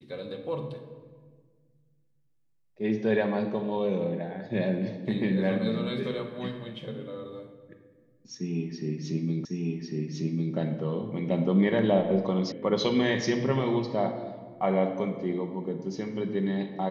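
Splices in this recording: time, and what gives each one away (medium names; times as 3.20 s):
9.45 s: repeat of the last 1.1 s
12.52 s: sound stops dead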